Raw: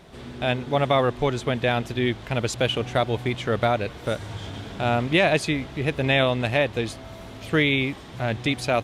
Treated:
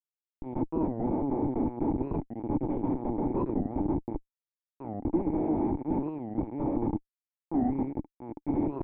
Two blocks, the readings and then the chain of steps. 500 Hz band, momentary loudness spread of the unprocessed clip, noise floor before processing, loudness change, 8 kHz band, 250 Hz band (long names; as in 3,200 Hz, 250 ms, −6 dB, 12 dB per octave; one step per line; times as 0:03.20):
−11.0 dB, 10 LU, −41 dBFS, −7.5 dB, below −40 dB, −0.5 dB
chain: peak hold with a decay on every bin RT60 2.25 s
Chebyshev band-pass filter 160–2,800 Hz, order 2
downward expander −30 dBFS
brickwall limiter −9.5 dBFS, peak gain reduction 7.5 dB
harmonic generator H 2 −21 dB, 3 −11 dB, 7 −33 dB, 8 −12 dB, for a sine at −9.5 dBFS
comparator with hysteresis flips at −24.5 dBFS
formant resonators in series u
wow of a warped record 45 rpm, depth 250 cents
level +8 dB